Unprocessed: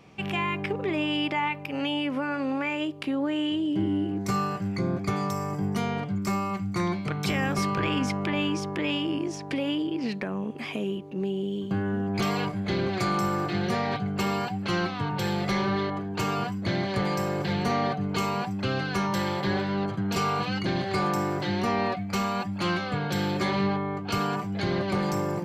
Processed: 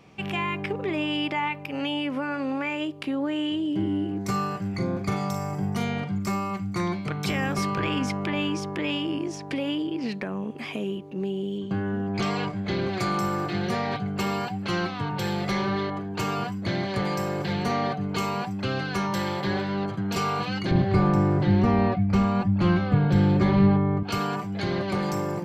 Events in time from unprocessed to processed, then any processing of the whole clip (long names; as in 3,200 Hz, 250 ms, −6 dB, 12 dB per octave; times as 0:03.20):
0:04.70–0:06.27: double-tracking delay 42 ms −7 dB
0:11.58–0:12.82: low-pass filter 7,300 Hz
0:20.71–0:24.03: RIAA equalisation playback